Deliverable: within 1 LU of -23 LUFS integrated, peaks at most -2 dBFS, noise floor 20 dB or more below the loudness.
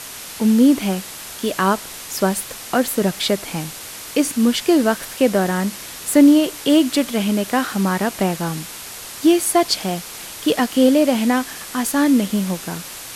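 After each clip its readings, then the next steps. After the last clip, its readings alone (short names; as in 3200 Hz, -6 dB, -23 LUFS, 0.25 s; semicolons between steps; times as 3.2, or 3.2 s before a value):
noise floor -34 dBFS; noise floor target -39 dBFS; loudness -18.5 LUFS; peak -1.0 dBFS; loudness target -23.0 LUFS
-> noise print and reduce 6 dB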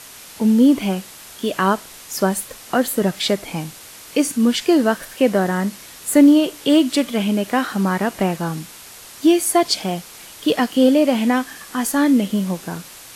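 noise floor -40 dBFS; loudness -18.5 LUFS; peak -1.5 dBFS; loudness target -23.0 LUFS
-> gain -4.5 dB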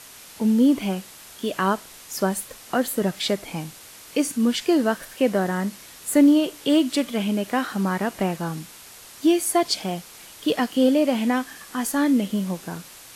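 loudness -23.0 LUFS; peak -6.0 dBFS; noise floor -45 dBFS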